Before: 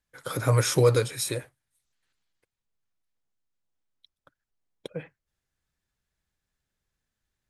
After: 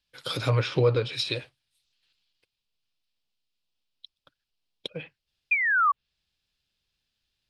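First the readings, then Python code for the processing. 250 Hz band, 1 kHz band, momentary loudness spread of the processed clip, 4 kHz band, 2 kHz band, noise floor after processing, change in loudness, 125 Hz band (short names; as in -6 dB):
-2.0 dB, +8.0 dB, 17 LU, +4.0 dB, +11.5 dB, -85 dBFS, -0.5 dB, -2.0 dB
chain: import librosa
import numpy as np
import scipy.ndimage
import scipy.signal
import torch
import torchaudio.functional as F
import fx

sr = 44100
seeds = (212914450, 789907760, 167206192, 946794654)

y = fx.band_shelf(x, sr, hz=3600.0, db=13.5, octaves=1.3)
y = fx.spec_paint(y, sr, seeds[0], shape='fall', start_s=5.51, length_s=0.41, low_hz=1100.0, high_hz=2500.0, level_db=-17.0)
y = fx.env_lowpass_down(y, sr, base_hz=1500.0, full_db=-15.5)
y = y * librosa.db_to_amplitude(-2.0)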